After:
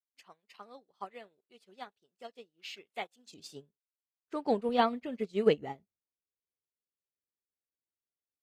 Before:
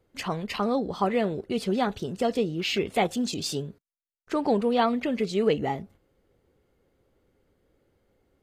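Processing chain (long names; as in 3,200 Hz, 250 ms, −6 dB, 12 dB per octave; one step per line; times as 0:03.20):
high-pass filter 1,000 Hz 6 dB per octave, from 0:03.31 160 Hz, from 0:04.69 57 Hz
expander for the loud parts 2.5 to 1, over −46 dBFS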